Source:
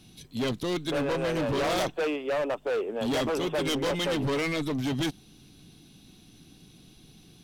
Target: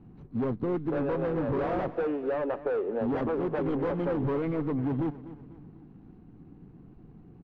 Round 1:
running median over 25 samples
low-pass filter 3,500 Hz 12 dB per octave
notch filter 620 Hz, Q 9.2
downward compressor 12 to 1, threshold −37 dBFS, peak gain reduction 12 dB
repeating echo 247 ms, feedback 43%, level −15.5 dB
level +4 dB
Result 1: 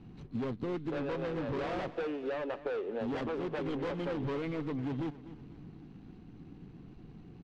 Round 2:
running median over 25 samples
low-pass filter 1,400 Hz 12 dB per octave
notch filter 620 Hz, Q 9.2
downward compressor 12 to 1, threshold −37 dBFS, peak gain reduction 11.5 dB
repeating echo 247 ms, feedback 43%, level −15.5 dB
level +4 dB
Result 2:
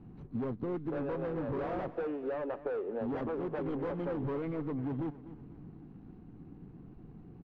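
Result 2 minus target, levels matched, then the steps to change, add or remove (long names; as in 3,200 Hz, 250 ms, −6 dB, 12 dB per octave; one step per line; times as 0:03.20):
downward compressor: peak gain reduction +6.5 dB
change: downward compressor 12 to 1, threshold −30 dBFS, peak gain reduction 5 dB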